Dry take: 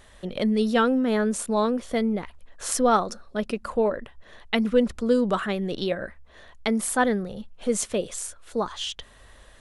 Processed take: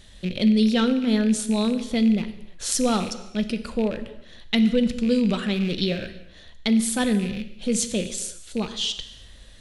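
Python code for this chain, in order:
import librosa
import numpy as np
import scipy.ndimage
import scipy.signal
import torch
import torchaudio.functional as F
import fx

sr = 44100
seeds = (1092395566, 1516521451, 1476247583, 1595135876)

p1 = fx.rattle_buzz(x, sr, strikes_db=-41.0, level_db=-28.0)
p2 = fx.peak_eq(p1, sr, hz=1100.0, db=12.0, octaves=2.3)
p3 = 10.0 ** (-8.5 / 20.0) * np.tanh(p2 / 10.0 ** (-8.5 / 20.0))
p4 = p2 + (p3 * librosa.db_to_amplitude(-9.5))
p5 = fx.curve_eq(p4, sr, hz=(200.0, 1100.0, 4000.0, 11000.0), db=(0, -26, 1, -5))
p6 = fx.rev_gated(p5, sr, seeds[0], gate_ms=380, shape='falling', drr_db=9.5)
y = p6 * librosa.db_to_amplitude(2.0)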